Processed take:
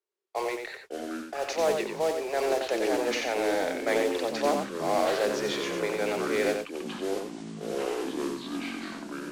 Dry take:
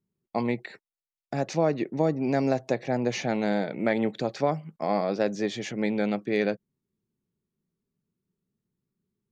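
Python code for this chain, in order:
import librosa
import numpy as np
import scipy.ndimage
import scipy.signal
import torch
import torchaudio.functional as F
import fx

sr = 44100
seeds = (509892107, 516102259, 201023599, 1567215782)

p1 = scipy.signal.sosfilt(scipy.signal.butter(8, 380.0, 'highpass', fs=sr, output='sos'), x)
p2 = fx.transient(p1, sr, attack_db=-3, sustain_db=7)
p3 = fx.mod_noise(p2, sr, seeds[0], snr_db=11)
p4 = fx.echo_pitch(p3, sr, ms=383, semitones=-7, count=2, db_per_echo=-6.0)
p5 = fx.air_absorb(p4, sr, metres=50.0)
y = p5 + fx.echo_single(p5, sr, ms=91, db=-5.5, dry=0)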